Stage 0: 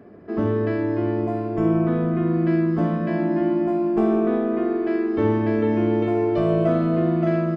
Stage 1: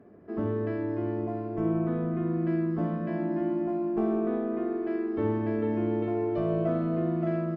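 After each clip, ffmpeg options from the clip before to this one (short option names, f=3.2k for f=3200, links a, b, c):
-af "highshelf=f=3k:g=-9.5,volume=-7.5dB"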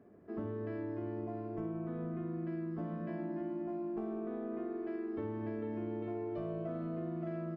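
-af "acompressor=threshold=-29dB:ratio=6,volume=-6.5dB"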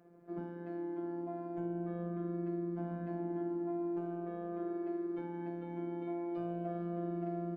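-af "lowshelf=f=98:g=-10.5,afftfilt=real='hypot(re,im)*cos(PI*b)':imag='0':win_size=1024:overlap=0.75,volume=3.5dB"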